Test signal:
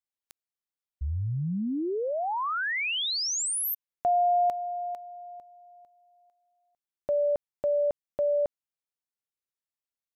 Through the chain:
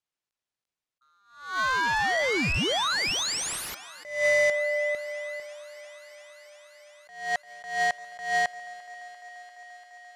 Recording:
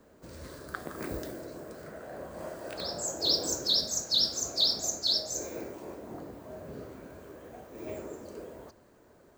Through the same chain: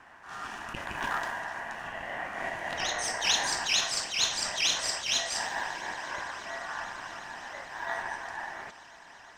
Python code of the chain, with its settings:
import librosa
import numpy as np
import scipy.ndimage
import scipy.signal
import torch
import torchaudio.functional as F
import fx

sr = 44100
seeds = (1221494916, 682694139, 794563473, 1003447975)

p1 = fx.high_shelf(x, sr, hz=7000.0, db=5.5)
p2 = p1 * np.sin(2.0 * np.pi * 1300.0 * np.arange(len(p1)) / sr)
p3 = (np.mod(10.0 ** (27.5 / 20.0) * p2 + 1.0, 2.0) - 1.0) / 10.0 ** (27.5 / 20.0)
p4 = p2 + F.gain(torch.from_numpy(p3), -4.5).numpy()
p5 = fx.air_absorb(p4, sr, metres=79.0)
p6 = p5 + fx.echo_thinned(p5, sr, ms=344, feedback_pct=84, hz=270.0, wet_db=-21.0, dry=0)
p7 = fx.attack_slew(p6, sr, db_per_s=110.0)
y = F.gain(torch.from_numpy(p7), 5.0).numpy()